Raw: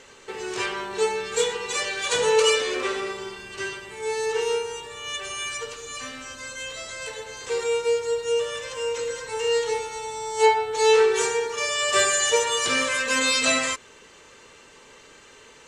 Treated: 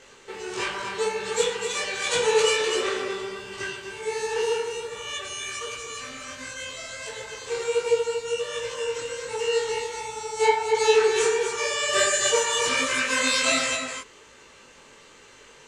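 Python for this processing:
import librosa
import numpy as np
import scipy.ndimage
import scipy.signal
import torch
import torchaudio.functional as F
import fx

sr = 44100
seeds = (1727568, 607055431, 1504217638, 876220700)

y = x + 10.0 ** (-6.5 / 20.0) * np.pad(x, (int(251 * sr / 1000.0), 0))[:len(x)]
y = fx.detune_double(y, sr, cents=48)
y = y * 10.0 ** (2.0 / 20.0)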